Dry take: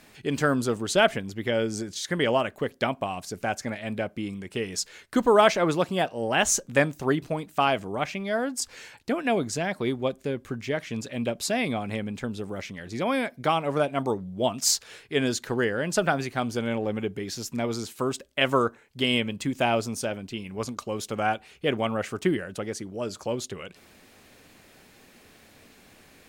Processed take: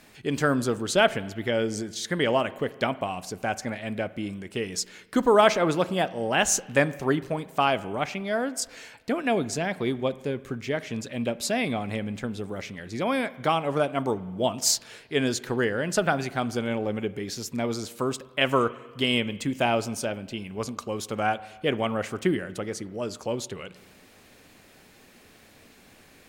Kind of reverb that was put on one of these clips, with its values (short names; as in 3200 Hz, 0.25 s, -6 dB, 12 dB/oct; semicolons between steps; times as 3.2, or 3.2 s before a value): spring tank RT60 1.4 s, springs 38/49 ms, chirp 45 ms, DRR 17 dB